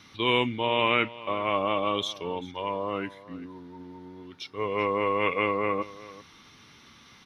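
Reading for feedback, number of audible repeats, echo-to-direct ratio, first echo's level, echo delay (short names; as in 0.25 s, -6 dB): no steady repeat, 1, -18.0 dB, -18.0 dB, 0.387 s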